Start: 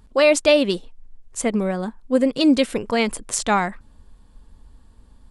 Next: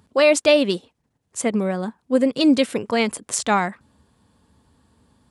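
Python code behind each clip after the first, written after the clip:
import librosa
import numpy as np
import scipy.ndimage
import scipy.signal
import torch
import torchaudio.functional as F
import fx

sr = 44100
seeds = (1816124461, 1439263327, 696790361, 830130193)

y = scipy.signal.sosfilt(scipy.signal.butter(4, 88.0, 'highpass', fs=sr, output='sos'), x)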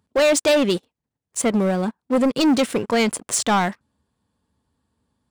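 y = fx.leveller(x, sr, passes=3)
y = F.gain(torch.from_numpy(y), -7.0).numpy()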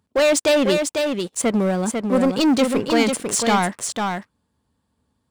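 y = x + 10.0 ** (-5.0 / 20.0) * np.pad(x, (int(497 * sr / 1000.0), 0))[:len(x)]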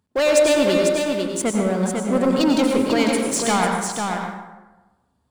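y = fx.rev_plate(x, sr, seeds[0], rt60_s=1.1, hf_ratio=0.55, predelay_ms=80, drr_db=1.5)
y = F.gain(torch.from_numpy(y), -2.5).numpy()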